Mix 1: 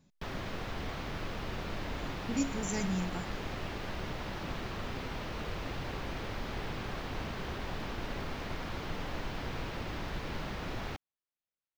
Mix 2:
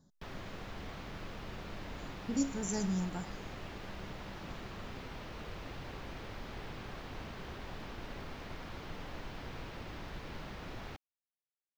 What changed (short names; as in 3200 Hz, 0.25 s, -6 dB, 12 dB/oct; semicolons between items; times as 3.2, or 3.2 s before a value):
speech: add Butterworth band-stop 2500 Hz, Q 1.2; background -6.5 dB